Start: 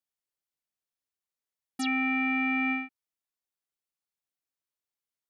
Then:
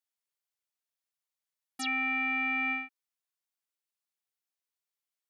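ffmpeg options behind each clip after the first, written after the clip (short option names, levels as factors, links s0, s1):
-af "highpass=f=750:p=1"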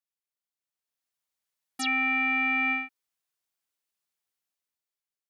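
-af "dynaudnorm=f=200:g=9:m=3.16,volume=0.531"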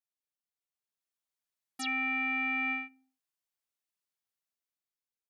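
-filter_complex "[0:a]asplit=2[s0][s1];[s1]adelay=76,lowpass=f=810:p=1,volume=0.106,asplit=2[s2][s3];[s3]adelay=76,lowpass=f=810:p=1,volume=0.54,asplit=2[s4][s5];[s5]adelay=76,lowpass=f=810:p=1,volume=0.54,asplit=2[s6][s7];[s7]adelay=76,lowpass=f=810:p=1,volume=0.54[s8];[s0][s2][s4][s6][s8]amix=inputs=5:normalize=0,volume=0.501"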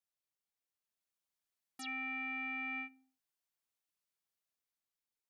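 -af "alimiter=level_in=2.37:limit=0.0631:level=0:latency=1:release=92,volume=0.422,volume=0.891"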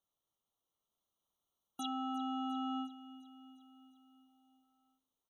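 -filter_complex "[0:a]asplit=2[s0][s1];[s1]adynamicsmooth=sensitivity=4:basefreq=4300,volume=0.75[s2];[s0][s2]amix=inputs=2:normalize=0,aecho=1:1:352|704|1056|1408|1760|2112:0.158|0.0951|0.0571|0.0342|0.0205|0.0123,afftfilt=real='re*eq(mod(floor(b*sr/1024/1400),2),0)':imag='im*eq(mod(floor(b*sr/1024/1400),2),0)':win_size=1024:overlap=0.75,volume=1.5"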